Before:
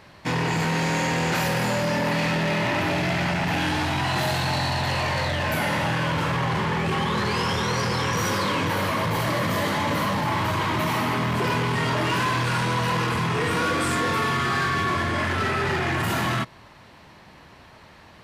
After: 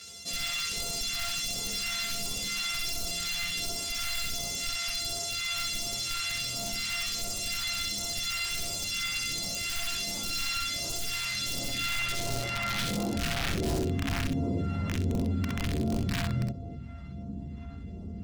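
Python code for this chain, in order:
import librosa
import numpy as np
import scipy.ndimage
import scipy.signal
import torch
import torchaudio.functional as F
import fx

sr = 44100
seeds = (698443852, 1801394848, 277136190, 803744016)

p1 = np.r_[np.sort(x[:len(x) // 64 * 64].reshape(-1, 64), axis=1).ravel(), x[len(x) // 64 * 64:]]
p2 = fx.filter_sweep_bandpass(p1, sr, from_hz=5400.0, to_hz=250.0, start_s=11.34, end_s=14.0, q=0.86)
p3 = fx.chorus_voices(p2, sr, voices=6, hz=0.2, base_ms=13, depth_ms=2.6, mix_pct=65)
p4 = (np.mod(10.0 ** (25.5 / 20.0) * p3 + 1.0, 2.0) - 1.0) / 10.0 ** (25.5 / 20.0)
p5 = fx.low_shelf(p4, sr, hz=300.0, db=6.5)
p6 = p5 + fx.room_early_taps(p5, sr, ms=(50, 64), db=(-13.0, -5.0), dry=0)
p7 = fx.phaser_stages(p6, sr, stages=2, low_hz=440.0, high_hz=1500.0, hz=1.4, feedback_pct=45)
p8 = fx.bass_treble(p7, sr, bass_db=2, treble_db=-5)
y = fx.env_flatten(p8, sr, amount_pct=50)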